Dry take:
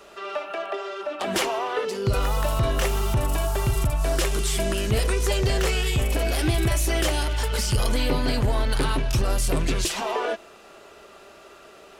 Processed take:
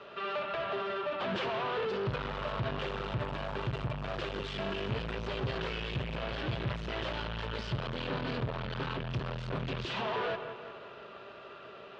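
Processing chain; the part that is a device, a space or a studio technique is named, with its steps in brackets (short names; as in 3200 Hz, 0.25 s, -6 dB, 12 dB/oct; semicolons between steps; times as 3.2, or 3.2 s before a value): analogue delay pedal into a guitar amplifier (analogue delay 0.176 s, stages 4096, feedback 54%, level -16 dB; tube stage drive 34 dB, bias 0.7; speaker cabinet 96–3500 Hz, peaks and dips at 130 Hz +5 dB, 310 Hz -7 dB, 760 Hz -5 dB, 2100 Hz -5 dB); gain +4.5 dB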